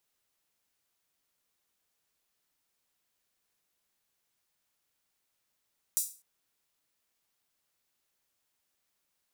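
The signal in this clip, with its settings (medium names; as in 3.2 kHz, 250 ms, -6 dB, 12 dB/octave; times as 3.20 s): open hi-hat length 0.25 s, high-pass 7.5 kHz, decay 0.35 s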